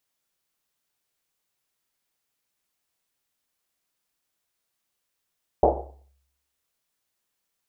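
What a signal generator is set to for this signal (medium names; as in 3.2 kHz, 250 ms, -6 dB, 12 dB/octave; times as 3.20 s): Risset drum, pitch 68 Hz, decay 0.83 s, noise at 590 Hz, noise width 490 Hz, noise 75%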